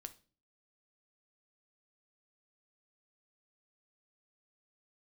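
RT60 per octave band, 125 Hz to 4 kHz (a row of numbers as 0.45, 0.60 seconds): 0.55, 0.60, 0.45, 0.30, 0.35, 0.35 seconds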